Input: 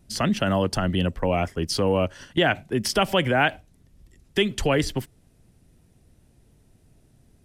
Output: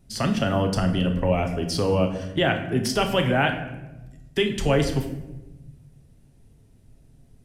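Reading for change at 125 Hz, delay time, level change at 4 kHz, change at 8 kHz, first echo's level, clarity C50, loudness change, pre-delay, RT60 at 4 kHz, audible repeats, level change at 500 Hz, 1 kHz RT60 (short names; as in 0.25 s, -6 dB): +3.0 dB, none, -1.5 dB, -1.5 dB, none, 9.0 dB, 0.0 dB, 7 ms, 0.65 s, none, +0.5 dB, 0.95 s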